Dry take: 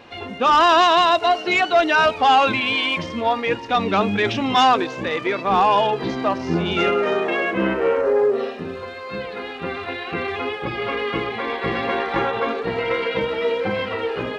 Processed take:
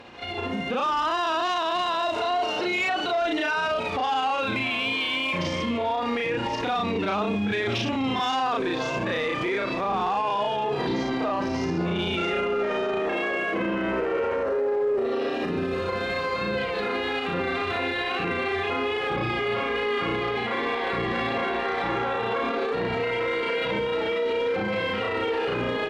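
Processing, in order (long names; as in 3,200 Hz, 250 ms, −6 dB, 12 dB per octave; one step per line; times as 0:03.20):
on a send: echo with shifted repeats 324 ms, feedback 40%, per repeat −110 Hz, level −23 dB
on the sum: time stretch by overlap-add 1.8×, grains 152 ms
automatic gain control gain up to 9.5 dB
brickwall limiter −19 dBFS, peak gain reduction 17.5 dB
harmonic generator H 5 −36 dB, 6 −43 dB, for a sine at −19 dBFS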